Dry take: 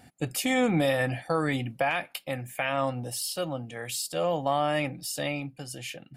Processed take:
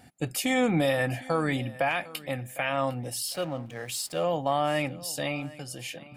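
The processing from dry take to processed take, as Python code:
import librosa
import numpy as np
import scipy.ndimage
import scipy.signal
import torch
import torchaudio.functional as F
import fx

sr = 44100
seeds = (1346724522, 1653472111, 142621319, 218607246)

y = fx.echo_feedback(x, sr, ms=755, feedback_pct=22, wet_db=-19.5)
y = fx.backlash(y, sr, play_db=-42.5, at=(3.27, 4.22), fade=0.02)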